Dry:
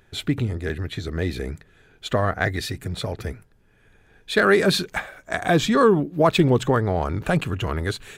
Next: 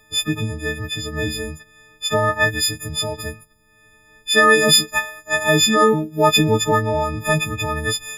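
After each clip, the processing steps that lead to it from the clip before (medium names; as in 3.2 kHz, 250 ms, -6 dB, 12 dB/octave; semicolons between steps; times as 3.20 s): partials quantised in pitch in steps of 6 st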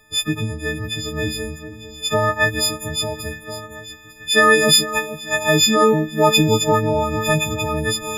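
echo whose repeats swap between lows and highs 450 ms, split 1.7 kHz, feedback 73%, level -13.5 dB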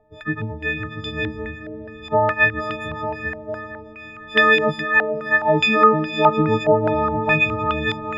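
echo that smears into a reverb 562 ms, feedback 43%, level -12.5 dB; step-sequenced low-pass 4.8 Hz 690–3000 Hz; trim -4 dB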